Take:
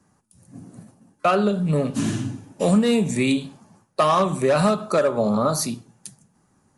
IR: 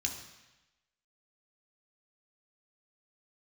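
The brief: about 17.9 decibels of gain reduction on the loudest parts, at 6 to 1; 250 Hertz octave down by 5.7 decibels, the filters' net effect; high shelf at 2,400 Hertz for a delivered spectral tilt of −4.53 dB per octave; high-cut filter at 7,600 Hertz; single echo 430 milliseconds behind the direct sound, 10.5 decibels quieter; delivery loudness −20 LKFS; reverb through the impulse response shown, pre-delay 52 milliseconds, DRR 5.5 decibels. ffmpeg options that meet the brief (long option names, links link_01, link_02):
-filter_complex "[0:a]lowpass=7600,equalizer=frequency=250:width_type=o:gain=-7.5,highshelf=frequency=2400:gain=3.5,acompressor=threshold=-35dB:ratio=6,aecho=1:1:430:0.299,asplit=2[link_01][link_02];[1:a]atrim=start_sample=2205,adelay=52[link_03];[link_02][link_03]afir=irnorm=-1:irlink=0,volume=-7.5dB[link_04];[link_01][link_04]amix=inputs=2:normalize=0,volume=17dB"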